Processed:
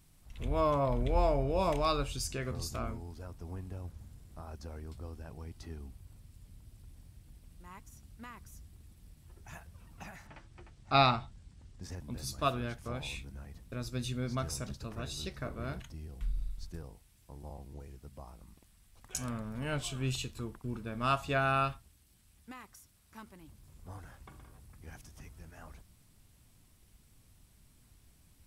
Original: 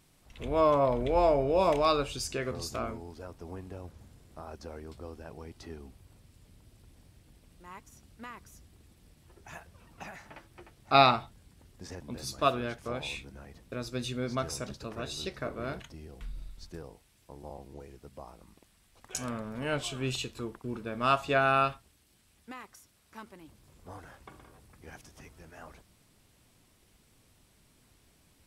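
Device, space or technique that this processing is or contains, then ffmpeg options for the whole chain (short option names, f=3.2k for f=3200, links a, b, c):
smiley-face EQ: -filter_complex "[0:a]asettb=1/sr,asplit=3[a][b][c];[a]atrim=end=10.274[d];[b]atrim=start=10.27:end=11.83,asetpts=PTS-STARTPTS,afade=t=in:d=0.004:c=qsin,afade=t=out:st=1.556:d=0.004:c=qsin,lowpass=f=8.1k:w=0.5412,lowpass=f=8.1k:w=1.3066[e];[c]atrim=start=11.826[f];[d][e]acrossfade=d=0.004:c1=hsin:c2=qsin[g];[g][f]acrossfade=d=0.004:c1=qsin:c2=hsin,tiltshelf=f=1.1k:g=3.5,lowshelf=f=92:g=6.5,equalizer=f=440:t=o:w=1.8:g=-7,highshelf=f=6.6k:g=8.5,volume=-2.5dB"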